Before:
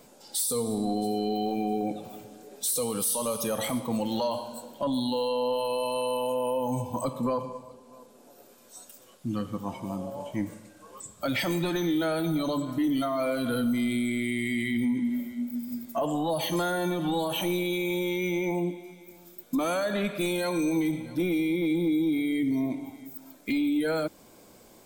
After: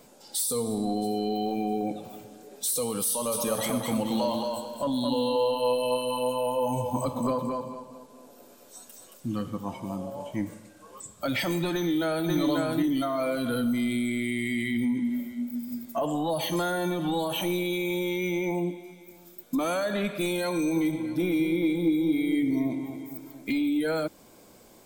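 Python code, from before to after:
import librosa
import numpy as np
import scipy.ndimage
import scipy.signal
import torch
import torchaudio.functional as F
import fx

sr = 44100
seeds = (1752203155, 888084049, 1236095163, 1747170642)

y = fx.echo_feedback(x, sr, ms=223, feedback_pct=28, wet_db=-4, at=(3.31, 9.48), fade=0.02)
y = fx.echo_throw(y, sr, start_s=11.74, length_s=0.54, ms=540, feedback_pct=15, wet_db=-2.0)
y = fx.echo_wet_lowpass(y, sr, ms=231, feedback_pct=58, hz=1900.0, wet_db=-9, at=(20.53, 23.63))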